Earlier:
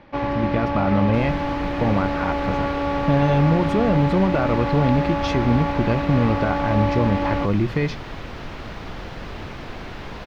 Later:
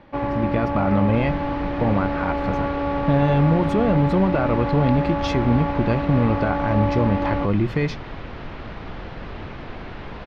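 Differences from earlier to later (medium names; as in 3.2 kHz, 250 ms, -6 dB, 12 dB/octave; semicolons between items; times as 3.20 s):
first sound: add treble shelf 3 kHz -11.5 dB; second sound: add distance through air 190 m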